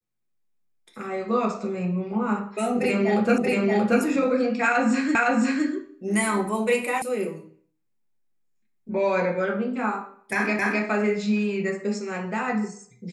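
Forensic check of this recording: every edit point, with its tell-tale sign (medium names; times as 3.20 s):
3.38 s: repeat of the last 0.63 s
5.15 s: repeat of the last 0.51 s
7.02 s: sound stops dead
10.59 s: repeat of the last 0.26 s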